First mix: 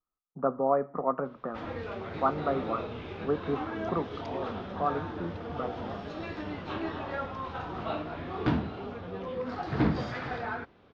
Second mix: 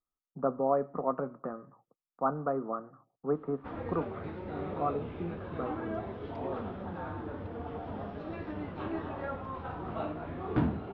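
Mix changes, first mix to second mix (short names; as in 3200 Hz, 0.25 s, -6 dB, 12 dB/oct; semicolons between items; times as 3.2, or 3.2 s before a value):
background: entry +2.10 s; master: add tape spacing loss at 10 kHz 33 dB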